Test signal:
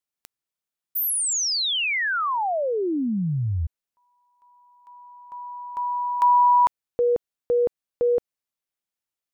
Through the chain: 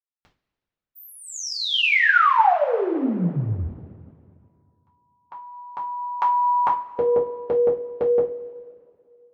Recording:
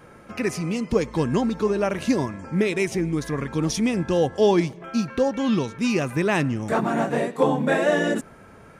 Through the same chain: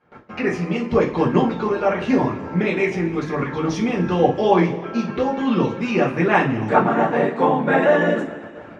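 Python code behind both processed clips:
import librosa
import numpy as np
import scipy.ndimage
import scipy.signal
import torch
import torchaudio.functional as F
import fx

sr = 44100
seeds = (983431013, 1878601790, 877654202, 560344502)

y = fx.highpass(x, sr, hz=170.0, slope=6)
y = fx.gate_hold(y, sr, open_db=-39.0, close_db=-43.0, hold_ms=32.0, range_db=-17, attack_ms=0.14, release_ms=47.0)
y = fx.dynamic_eq(y, sr, hz=4400.0, q=1.5, threshold_db=-44.0, ratio=4.0, max_db=-6)
y = fx.rev_double_slope(y, sr, seeds[0], early_s=0.32, late_s=2.3, knee_db=-19, drr_db=-5.0)
y = fx.hpss(y, sr, part='percussive', gain_db=7)
y = fx.air_absorb(y, sr, metres=220.0)
y = F.gain(torch.from_numpy(y), -2.0).numpy()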